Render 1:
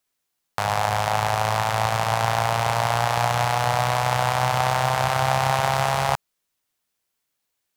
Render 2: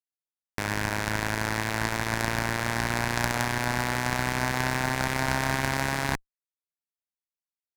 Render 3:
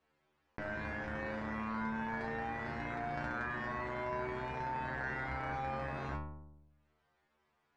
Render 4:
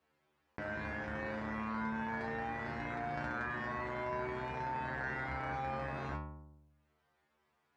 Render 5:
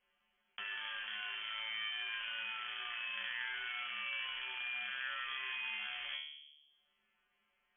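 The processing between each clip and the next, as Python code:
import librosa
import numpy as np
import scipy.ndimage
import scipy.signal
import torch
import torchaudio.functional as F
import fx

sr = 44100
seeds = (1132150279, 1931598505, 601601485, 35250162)

y1 = fx.cheby_harmonics(x, sr, harmonics=(3, 5, 6), levels_db=(-7, -22, -17), full_scale_db=-4.0)
y1 = fx.peak_eq(y1, sr, hz=3000.0, db=-6.0, octaves=0.37)
y2 = scipy.signal.sosfilt(scipy.signal.butter(2, 1600.0, 'lowpass', fs=sr, output='sos'), y1)
y2 = fx.stiff_resonator(y2, sr, f0_hz=73.0, decay_s=0.59, stiffness=0.002)
y2 = fx.env_flatten(y2, sr, amount_pct=50)
y3 = scipy.signal.sosfilt(scipy.signal.butter(2, 51.0, 'highpass', fs=sr, output='sos'), y2)
y4 = fx.env_lowpass_down(y3, sr, base_hz=2200.0, full_db=-37.5)
y4 = fx.freq_invert(y4, sr, carrier_hz=3300)
y4 = fx.high_shelf(y4, sr, hz=2300.0, db=-11.5)
y4 = y4 * librosa.db_to_amplitude(3.5)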